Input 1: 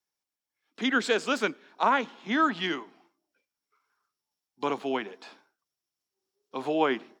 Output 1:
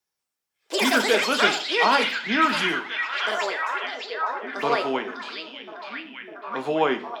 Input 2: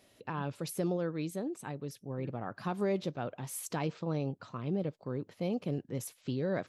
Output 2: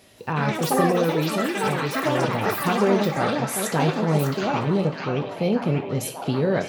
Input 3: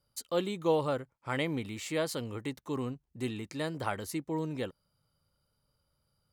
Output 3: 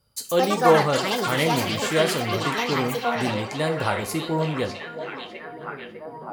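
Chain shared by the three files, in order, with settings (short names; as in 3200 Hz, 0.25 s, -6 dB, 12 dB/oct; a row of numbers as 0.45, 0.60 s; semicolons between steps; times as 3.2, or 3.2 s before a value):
echoes that change speed 0.181 s, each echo +7 st, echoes 3; on a send: delay with a stepping band-pass 0.601 s, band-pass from 3600 Hz, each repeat -0.7 oct, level -0.5 dB; on the sum: two-slope reverb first 0.38 s, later 1.8 s, from -25 dB, DRR 5 dB; match loudness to -23 LUFS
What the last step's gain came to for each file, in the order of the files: +2.5, +10.5, +8.0 dB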